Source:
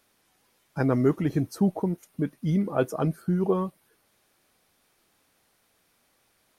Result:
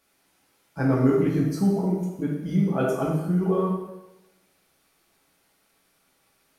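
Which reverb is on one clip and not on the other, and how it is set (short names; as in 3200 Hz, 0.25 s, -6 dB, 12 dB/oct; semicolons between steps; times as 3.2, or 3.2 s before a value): plate-style reverb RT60 1 s, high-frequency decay 0.9×, DRR -4.5 dB; gain -4 dB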